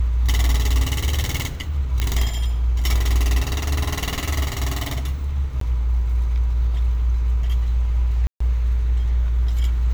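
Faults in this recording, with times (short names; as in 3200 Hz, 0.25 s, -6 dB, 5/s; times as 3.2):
2 pop -8 dBFS
5.6–5.61 gap 13 ms
8.27–8.4 gap 0.134 s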